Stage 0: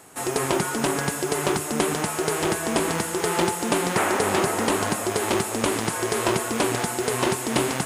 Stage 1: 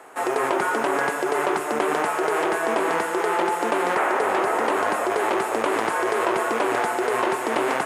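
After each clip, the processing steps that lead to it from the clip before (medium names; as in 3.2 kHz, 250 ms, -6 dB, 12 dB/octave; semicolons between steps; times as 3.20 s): three-band isolator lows -23 dB, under 350 Hz, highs -16 dB, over 2.3 kHz; in parallel at +1 dB: compressor with a negative ratio -30 dBFS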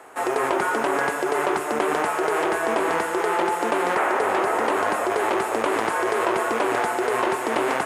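peaking EQ 73 Hz +13 dB 0.45 oct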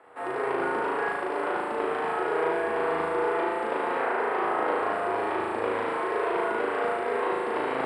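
boxcar filter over 7 samples; feedback comb 480 Hz, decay 0.48 s, mix 70%; flutter echo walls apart 6.4 m, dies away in 1.4 s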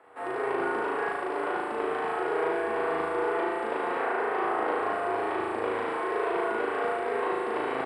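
doubling 40 ms -11.5 dB; trim -2 dB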